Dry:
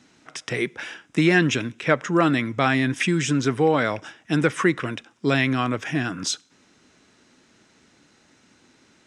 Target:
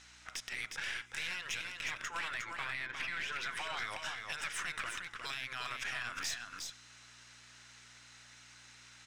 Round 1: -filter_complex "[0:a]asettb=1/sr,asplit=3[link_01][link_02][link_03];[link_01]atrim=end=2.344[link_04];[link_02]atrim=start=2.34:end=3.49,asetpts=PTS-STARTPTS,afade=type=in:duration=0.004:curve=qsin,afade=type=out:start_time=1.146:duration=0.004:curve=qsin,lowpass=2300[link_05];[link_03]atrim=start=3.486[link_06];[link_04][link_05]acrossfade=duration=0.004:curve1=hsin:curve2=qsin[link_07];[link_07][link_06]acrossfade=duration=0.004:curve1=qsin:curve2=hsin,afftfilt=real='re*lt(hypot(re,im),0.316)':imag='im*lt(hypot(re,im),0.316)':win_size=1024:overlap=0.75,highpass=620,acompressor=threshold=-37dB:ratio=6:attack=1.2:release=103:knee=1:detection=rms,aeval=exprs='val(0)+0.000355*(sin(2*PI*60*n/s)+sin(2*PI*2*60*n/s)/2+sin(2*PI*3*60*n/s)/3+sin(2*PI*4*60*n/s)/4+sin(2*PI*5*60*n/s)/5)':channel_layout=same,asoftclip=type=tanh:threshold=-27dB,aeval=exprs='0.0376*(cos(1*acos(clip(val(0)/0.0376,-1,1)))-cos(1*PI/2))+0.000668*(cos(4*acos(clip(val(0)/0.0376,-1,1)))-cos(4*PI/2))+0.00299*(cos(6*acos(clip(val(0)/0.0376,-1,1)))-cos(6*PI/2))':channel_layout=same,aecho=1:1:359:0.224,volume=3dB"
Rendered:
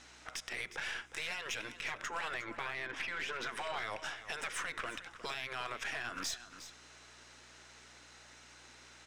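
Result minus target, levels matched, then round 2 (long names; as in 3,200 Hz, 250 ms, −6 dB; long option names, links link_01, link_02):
500 Hz band +8.0 dB; echo-to-direct −8 dB
-filter_complex "[0:a]asettb=1/sr,asplit=3[link_01][link_02][link_03];[link_01]atrim=end=2.344[link_04];[link_02]atrim=start=2.34:end=3.49,asetpts=PTS-STARTPTS,afade=type=in:duration=0.004:curve=qsin,afade=type=out:start_time=1.146:duration=0.004:curve=qsin,lowpass=2300[link_05];[link_03]atrim=start=3.486[link_06];[link_04][link_05]acrossfade=duration=0.004:curve1=hsin:curve2=qsin[link_07];[link_07][link_06]acrossfade=duration=0.004:curve1=qsin:curve2=hsin,afftfilt=real='re*lt(hypot(re,im),0.316)':imag='im*lt(hypot(re,im),0.316)':win_size=1024:overlap=0.75,highpass=1300,acompressor=threshold=-37dB:ratio=6:attack=1.2:release=103:knee=1:detection=rms,aeval=exprs='val(0)+0.000355*(sin(2*PI*60*n/s)+sin(2*PI*2*60*n/s)/2+sin(2*PI*3*60*n/s)/3+sin(2*PI*4*60*n/s)/4+sin(2*PI*5*60*n/s)/5)':channel_layout=same,asoftclip=type=tanh:threshold=-27dB,aeval=exprs='0.0376*(cos(1*acos(clip(val(0)/0.0376,-1,1)))-cos(1*PI/2))+0.000668*(cos(4*acos(clip(val(0)/0.0376,-1,1)))-cos(4*PI/2))+0.00299*(cos(6*acos(clip(val(0)/0.0376,-1,1)))-cos(6*PI/2))':channel_layout=same,aecho=1:1:359:0.562,volume=3dB"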